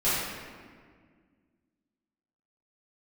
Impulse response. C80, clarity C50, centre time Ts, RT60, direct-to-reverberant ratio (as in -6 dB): 0.5 dB, -2.5 dB, 0.112 s, 1.8 s, -13.5 dB